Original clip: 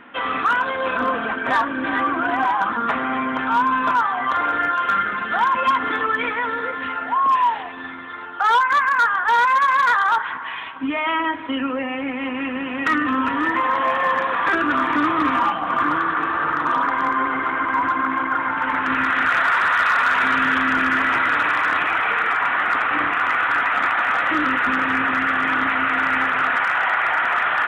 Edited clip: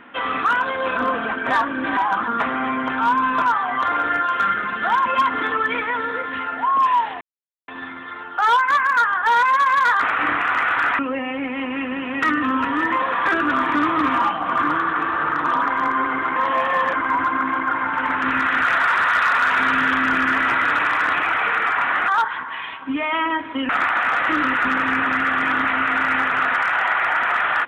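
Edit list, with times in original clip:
1.97–2.46 s: delete
7.70 s: insert silence 0.47 s
10.02–11.63 s: swap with 22.72–23.71 s
13.66–14.23 s: move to 17.57 s

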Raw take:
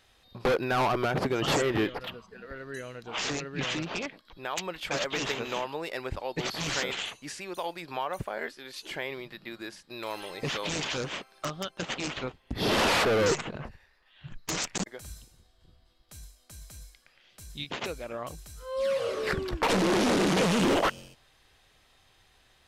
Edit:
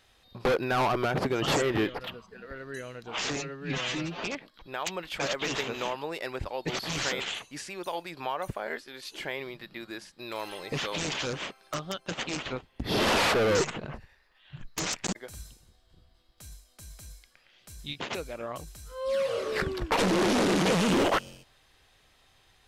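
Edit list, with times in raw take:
3.36–3.94 s: stretch 1.5×

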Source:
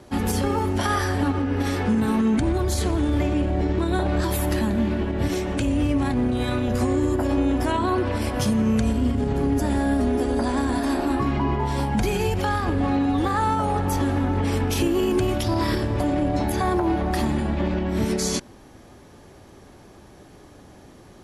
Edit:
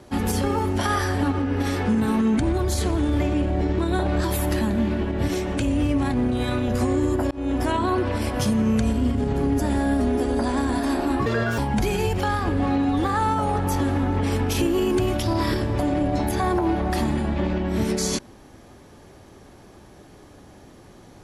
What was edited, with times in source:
7.31–7.67 s: fade in equal-power
11.26–11.79 s: speed 165%

